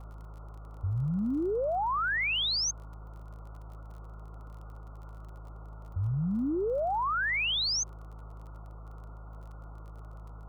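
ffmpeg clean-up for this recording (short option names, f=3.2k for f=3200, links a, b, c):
-af "adeclick=t=4,bandreject=f=53.3:t=h:w=4,bandreject=f=106.6:t=h:w=4,bandreject=f=159.9:t=h:w=4,afwtdn=0.0063"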